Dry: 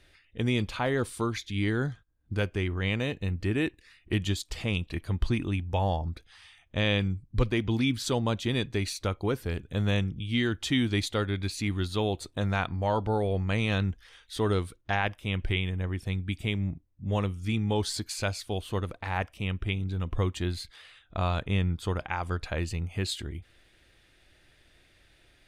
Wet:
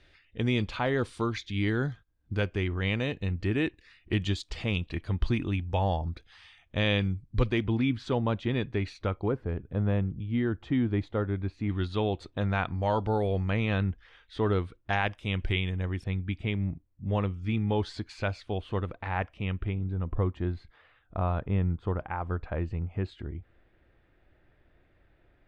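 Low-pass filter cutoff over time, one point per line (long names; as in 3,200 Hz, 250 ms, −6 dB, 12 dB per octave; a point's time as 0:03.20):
4,900 Hz
from 0:07.64 2,300 Hz
from 0:09.28 1,200 Hz
from 0:11.69 3,100 Hz
from 0:12.76 5,800 Hz
from 0:13.50 2,600 Hz
from 0:14.90 6,300 Hz
from 0:16.04 2,600 Hz
from 0:19.69 1,300 Hz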